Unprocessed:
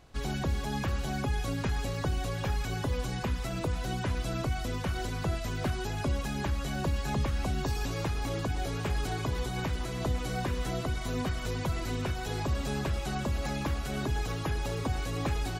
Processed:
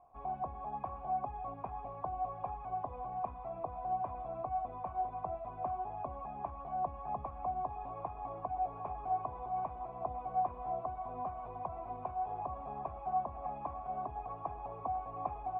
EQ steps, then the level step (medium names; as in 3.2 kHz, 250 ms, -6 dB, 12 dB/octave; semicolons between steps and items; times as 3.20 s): cascade formant filter a; peaking EQ 1.2 kHz -2 dB; +8.5 dB